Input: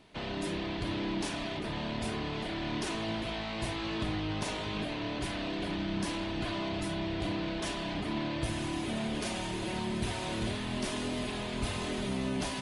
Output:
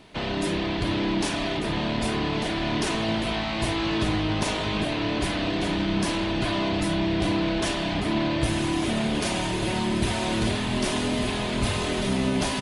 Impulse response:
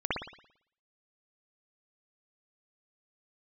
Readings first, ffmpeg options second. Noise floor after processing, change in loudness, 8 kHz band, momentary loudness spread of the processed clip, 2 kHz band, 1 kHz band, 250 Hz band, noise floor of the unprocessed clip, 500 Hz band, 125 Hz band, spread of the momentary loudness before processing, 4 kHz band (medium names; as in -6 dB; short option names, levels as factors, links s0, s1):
-28 dBFS, +9.0 dB, +9.0 dB, 2 LU, +9.0 dB, +9.0 dB, +9.0 dB, -37 dBFS, +9.0 dB, +9.0 dB, 2 LU, +9.0 dB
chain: -af "aecho=1:1:1195:0.299,volume=2.66"